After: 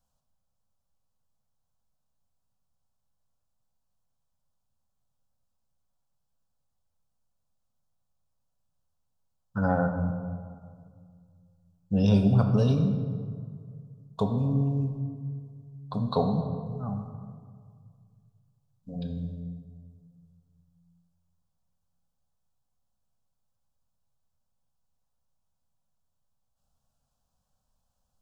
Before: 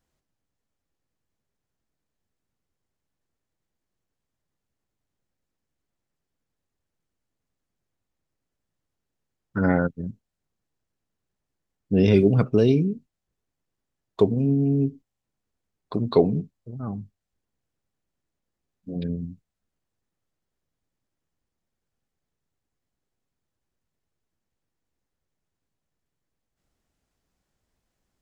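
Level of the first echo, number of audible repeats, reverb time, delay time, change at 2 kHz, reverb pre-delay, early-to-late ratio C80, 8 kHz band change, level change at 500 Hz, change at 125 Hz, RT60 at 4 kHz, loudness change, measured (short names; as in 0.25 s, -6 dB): none, none, 2.0 s, none, -6.5 dB, 4 ms, 8.0 dB, n/a, -9.0 dB, -0.5 dB, 1.1 s, -5.5 dB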